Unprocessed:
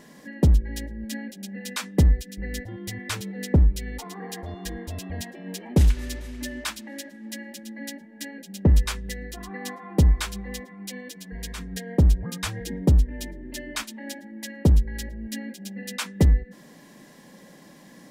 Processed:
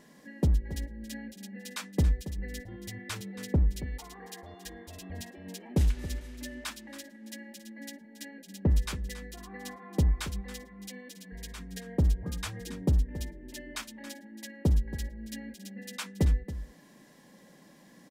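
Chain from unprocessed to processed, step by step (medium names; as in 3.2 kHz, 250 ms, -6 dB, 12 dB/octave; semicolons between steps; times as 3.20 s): 3.86–5.02 s: bass shelf 300 Hz -8 dB; delay 277 ms -13.5 dB; trim -7.5 dB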